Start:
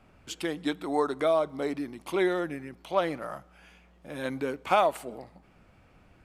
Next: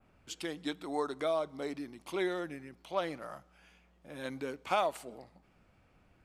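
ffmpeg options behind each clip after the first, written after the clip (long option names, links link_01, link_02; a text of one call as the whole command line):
ffmpeg -i in.wav -af "adynamicequalizer=threshold=0.00282:dfrequency=5500:dqfactor=0.76:tfrequency=5500:tqfactor=0.76:attack=5:release=100:ratio=0.375:range=3:mode=boostabove:tftype=bell,volume=-7.5dB" out.wav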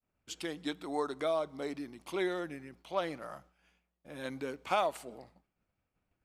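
ffmpeg -i in.wav -af "agate=range=-33dB:threshold=-54dB:ratio=3:detection=peak" out.wav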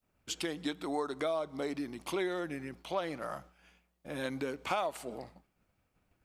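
ffmpeg -i in.wav -af "acompressor=threshold=-41dB:ratio=2.5,volume=7dB" out.wav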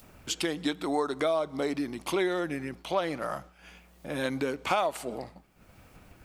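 ffmpeg -i in.wav -af "acompressor=mode=upward:threshold=-45dB:ratio=2.5,volume=6dB" out.wav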